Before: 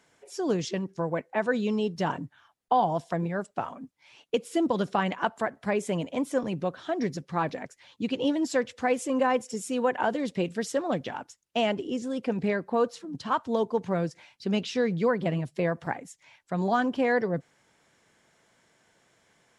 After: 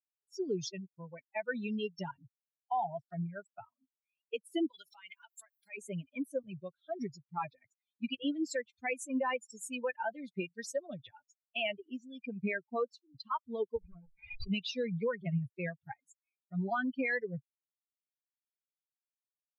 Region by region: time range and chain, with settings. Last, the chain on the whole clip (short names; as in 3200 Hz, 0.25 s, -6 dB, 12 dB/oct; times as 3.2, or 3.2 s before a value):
4.7–5.78 RIAA curve recording + compressor 2.5:1, threshold -34 dBFS
13.76–14.51 minimum comb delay 4.5 ms + tape spacing loss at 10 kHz 45 dB + backwards sustainer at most 39 dB/s
whole clip: per-bin expansion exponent 3; bell 2500 Hz +12 dB 0.62 oct; limiter -25 dBFS